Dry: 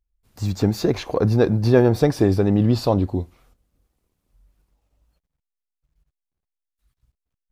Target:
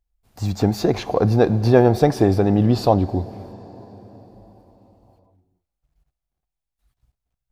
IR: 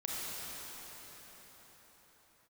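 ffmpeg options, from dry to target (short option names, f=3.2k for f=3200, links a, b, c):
-filter_complex "[0:a]equalizer=f=740:t=o:w=0.48:g=8,asplit=2[a][b];[1:a]atrim=start_sample=2205,lowpass=7.8k[c];[b][c]afir=irnorm=-1:irlink=0,volume=-20dB[d];[a][d]amix=inputs=2:normalize=0"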